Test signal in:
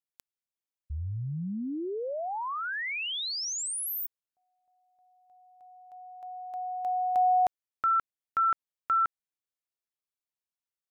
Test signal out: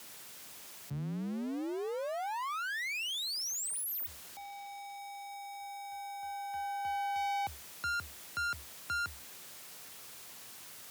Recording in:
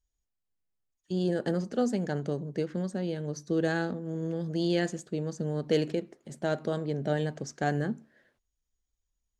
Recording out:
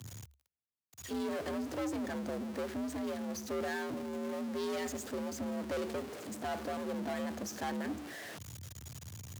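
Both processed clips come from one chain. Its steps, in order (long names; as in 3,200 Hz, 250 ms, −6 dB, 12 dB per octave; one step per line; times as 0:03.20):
converter with a step at zero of −33.5 dBFS
tube saturation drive 31 dB, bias 0.75
frequency shifter +69 Hz
level −2 dB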